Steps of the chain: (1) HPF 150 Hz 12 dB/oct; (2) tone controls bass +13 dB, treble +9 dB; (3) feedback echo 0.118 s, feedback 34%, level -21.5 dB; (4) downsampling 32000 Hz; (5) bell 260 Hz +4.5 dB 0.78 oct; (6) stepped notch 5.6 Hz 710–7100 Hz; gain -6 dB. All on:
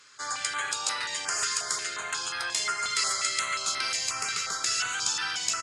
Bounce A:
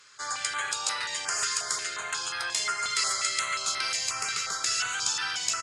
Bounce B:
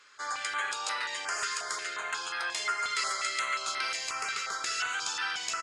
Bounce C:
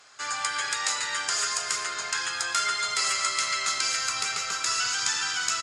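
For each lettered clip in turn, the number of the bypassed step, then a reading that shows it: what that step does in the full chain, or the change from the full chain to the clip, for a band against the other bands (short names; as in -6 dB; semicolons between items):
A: 5, 250 Hz band -2.5 dB; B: 2, 8 kHz band -7.0 dB; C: 6, 125 Hz band -1.5 dB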